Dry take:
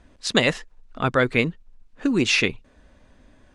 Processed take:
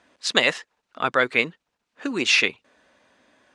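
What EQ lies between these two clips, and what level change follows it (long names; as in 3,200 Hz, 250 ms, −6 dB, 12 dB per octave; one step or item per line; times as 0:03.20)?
meter weighting curve A
+1.0 dB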